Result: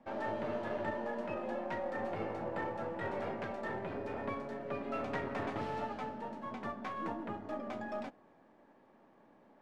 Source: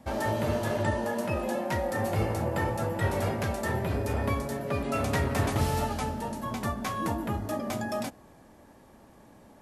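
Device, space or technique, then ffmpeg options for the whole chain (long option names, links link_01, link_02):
crystal radio: -af "highpass=220,lowpass=2500,aeval=exprs='if(lt(val(0),0),0.708*val(0),val(0))':channel_layout=same,volume=-6dB"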